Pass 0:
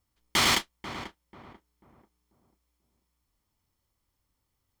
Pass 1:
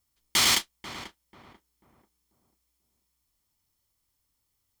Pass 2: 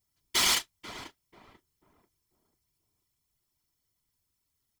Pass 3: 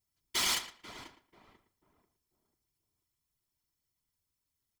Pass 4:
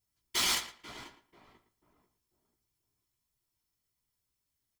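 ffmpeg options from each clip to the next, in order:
-af "highshelf=f=2.9k:g=11,volume=-4.5dB"
-af "aecho=1:1:3:0.97,afftfilt=real='hypot(re,im)*cos(2*PI*random(0))':imag='hypot(re,im)*sin(2*PI*random(1))':win_size=512:overlap=0.75"
-filter_complex "[0:a]asplit=2[a][b];[b]adelay=114,lowpass=f=3.1k:p=1,volume=-12dB,asplit=2[c][d];[d]adelay=114,lowpass=f=3.1k:p=1,volume=0.2,asplit=2[e][f];[f]adelay=114,lowpass=f=3.1k:p=1,volume=0.2[g];[a][c][e][g]amix=inputs=4:normalize=0,volume=-5.5dB"
-filter_complex "[0:a]asplit=2[a][b];[b]adelay=17,volume=-5dB[c];[a][c]amix=inputs=2:normalize=0"

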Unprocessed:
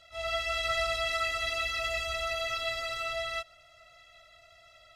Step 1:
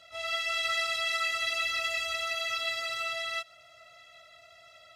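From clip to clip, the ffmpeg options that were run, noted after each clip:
-filter_complex "[0:a]highpass=120,acrossover=split=1300[a][b];[a]acompressor=threshold=-45dB:ratio=6[c];[c][b]amix=inputs=2:normalize=0,volume=2.5dB"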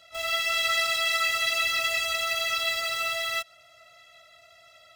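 -filter_complex "[0:a]highshelf=f=10k:g=8.5,asplit=2[a][b];[b]acrusher=bits=5:mix=0:aa=0.000001,volume=-4dB[c];[a][c]amix=inputs=2:normalize=0"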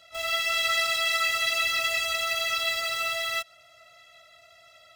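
-af anull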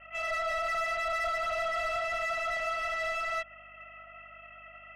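-filter_complex "[0:a]lowpass=f=2.8k:t=q:w=0.5098,lowpass=f=2.8k:t=q:w=0.6013,lowpass=f=2.8k:t=q:w=0.9,lowpass=f=2.8k:t=q:w=2.563,afreqshift=-3300,asplit=2[a][b];[b]highpass=f=720:p=1,volume=23dB,asoftclip=type=tanh:threshold=-16dB[c];[a][c]amix=inputs=2:normalize=0,lowpass=f=2.5k:p=1,volume=-6dB,aeval=exprs='val(0)+0.00178*(sin(2*PI*50*n/s)+sin(2*PI*2*50*n/s)/2+sin(2*PI*3*50*n/s)/3+sin(2*PI*4*50*n/s)/4+sin(2*PI*5*50*n/s)/5)':c=same,volume=-8.5dB"

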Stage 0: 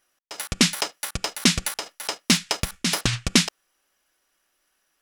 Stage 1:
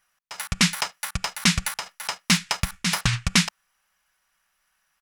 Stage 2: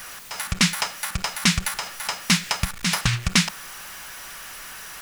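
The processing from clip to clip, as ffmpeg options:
-af "firequalizer=gain_entry='entry(190,0);entry(270,-17);entry(900,0);entry(2200,0);entry(3200,-4)':delay=0.05:min_phase=1,volume=2.5dB"
-af "aeval=exprs='val(0)+0.5*0.0237*sgn(val(0))':c=same"

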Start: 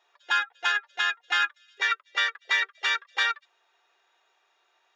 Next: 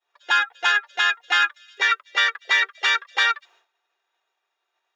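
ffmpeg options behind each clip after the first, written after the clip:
-filter_complex "[0:a]agate=range=-33dB:threshold=-57dB:ratio=3:detection=peak,asplit=2[a][b];[b]alimiter=limit=-23.5dB:level=0:latency=1:release=12,volume=2dB[c];[a][c]amix=inputs=2:normalize=0,volume=2dB"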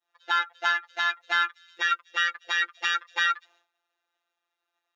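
-filter_complex "[0:a]afftfilt=real='hypot(re,im)*cos(PI*b)':imag='0':win_size=1024:overlap=0.75,asplit=2[a][b];[b]asoftclip=type=tanh:threshold=-14dB,volume=-10dB[c];[a][c]amix=inputs=2:normalize=0,volume=-4dB"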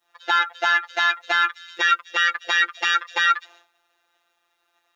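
-af "alimiter=level_in=18dB:limit=-1dB:release=50:level=0:latency=1,volume=-5dB"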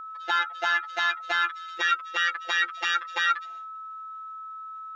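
-af "aeval=exprs='val(0)+0.0282*sin(2*PI*1300*n/s)':c=same,volume=-5.5dB"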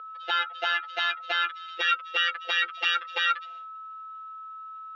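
-af "highpass=460,equalizer=f=470:t=q:w=4:g=10,equalizer=f=980:t=q:w=4:g=-9,equalizer=f=1.8k:t=q:w=4:g=-4,equalizer=f=2.9k:t=q:w=4:g=7,lowpass=f=4.9k:w=0.5412,lowpass=f=4.9k:w=1.3066"

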